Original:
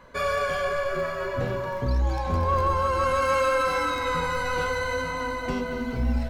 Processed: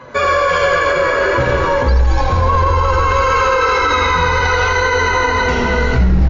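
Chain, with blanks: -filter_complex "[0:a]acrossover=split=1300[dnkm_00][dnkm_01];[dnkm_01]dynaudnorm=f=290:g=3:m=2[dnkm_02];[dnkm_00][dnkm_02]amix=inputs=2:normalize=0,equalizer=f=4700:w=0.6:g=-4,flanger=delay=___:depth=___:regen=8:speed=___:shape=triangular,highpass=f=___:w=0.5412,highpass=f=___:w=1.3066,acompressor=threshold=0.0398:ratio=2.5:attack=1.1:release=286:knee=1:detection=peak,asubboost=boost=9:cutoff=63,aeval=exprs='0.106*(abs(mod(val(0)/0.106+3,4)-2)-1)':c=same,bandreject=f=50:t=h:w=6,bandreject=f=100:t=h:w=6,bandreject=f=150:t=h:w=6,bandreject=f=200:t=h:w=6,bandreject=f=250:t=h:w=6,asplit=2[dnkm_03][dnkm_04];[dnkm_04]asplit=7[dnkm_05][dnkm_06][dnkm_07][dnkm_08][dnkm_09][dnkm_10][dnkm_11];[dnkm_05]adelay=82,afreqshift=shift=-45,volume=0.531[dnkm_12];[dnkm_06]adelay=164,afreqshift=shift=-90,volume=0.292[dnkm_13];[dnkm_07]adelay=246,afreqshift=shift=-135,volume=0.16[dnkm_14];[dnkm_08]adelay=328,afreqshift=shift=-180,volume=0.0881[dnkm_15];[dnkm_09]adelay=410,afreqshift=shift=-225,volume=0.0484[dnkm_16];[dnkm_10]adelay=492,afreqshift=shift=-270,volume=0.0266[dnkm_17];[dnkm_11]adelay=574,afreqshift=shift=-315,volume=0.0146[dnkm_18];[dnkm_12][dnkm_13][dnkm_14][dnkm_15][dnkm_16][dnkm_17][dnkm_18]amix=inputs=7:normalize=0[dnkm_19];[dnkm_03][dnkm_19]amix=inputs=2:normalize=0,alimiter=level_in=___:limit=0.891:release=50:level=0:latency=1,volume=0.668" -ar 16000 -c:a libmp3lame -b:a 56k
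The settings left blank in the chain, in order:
7.7, 8.3, 0.41, 50, 50, 13.3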